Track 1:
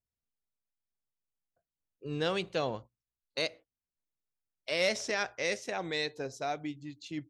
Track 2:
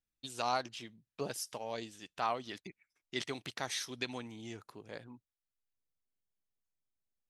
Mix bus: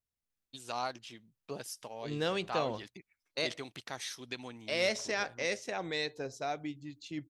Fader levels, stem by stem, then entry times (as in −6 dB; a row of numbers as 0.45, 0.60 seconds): −1.5, −3.0 decibels; 0.00, 0.30 seconds